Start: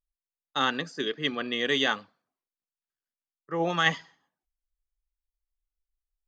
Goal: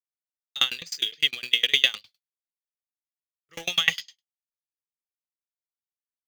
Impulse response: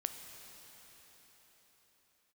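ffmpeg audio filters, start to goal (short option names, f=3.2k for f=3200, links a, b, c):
-filter_complex "[0:a]agate=range=-33dB:threshold=-46dB:ratio=3:detection=peak,aexciter=amount=10.7:drive=9:freq=2.7k,acrossover=split=2700[a][b];[b]acompressor=threshold=-22dB:ratio=4:attack=1:release=60[c];[a][c]amix=inputs=2:normalize=0,asplit=2[d][e];[e]acrusher=bits=3:mix=0:aa=0.000001,volume=-7dB[f];[d][f]amix=inputs=2:normalize=0,equalizer=f=125:t=o:w=1:g=3,equalizer=f=250:t=o:w=1:g=-11,equalizer=f=1k:t=o:w=1:g=-7,equalizer=f=2k:t=o:w=1:g=10,aeval=exprs='val(0)*pow(10,-30*if(lt(mod(9.8*n/s,1),2*abs(9.8)/1000),1-mod(9.8*n/s,1)/(2*abs(9.8)/1000),(mod(9.8*n/s,1)-2*abs(9.8)/1000)/(1-2*abs(9.8)/1000))/20)':c=same,volume=-4dB"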